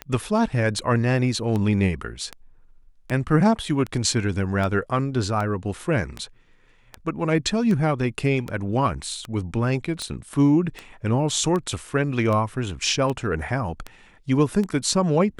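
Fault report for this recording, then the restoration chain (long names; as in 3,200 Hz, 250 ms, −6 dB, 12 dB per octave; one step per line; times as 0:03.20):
scratch tick 78 rpm −16 dBFS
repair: click removal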